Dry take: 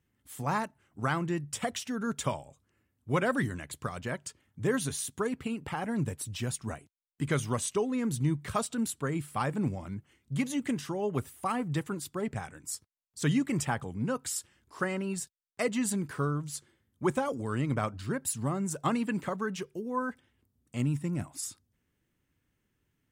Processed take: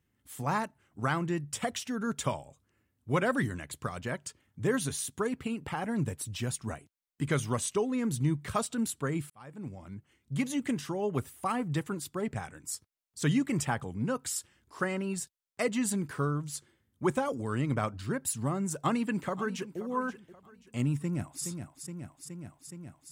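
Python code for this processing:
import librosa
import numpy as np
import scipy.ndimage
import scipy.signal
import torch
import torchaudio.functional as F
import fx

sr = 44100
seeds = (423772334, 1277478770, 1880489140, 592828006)

y = fx.echo_throw(x, sr, start_s=18.76, length_s=1.03, ms=530, feedback_pct=35, wet_db=-15.0)
y = fx.echo_throw(y, sr, start_s=20.99, length_s=0.45, ms=420, feedback_pct=80, wet_db=-7.0)
y = fx.edit(y, sr, fx.fade_in_span(start_s=9.3, length_s=1.15), tone=tone)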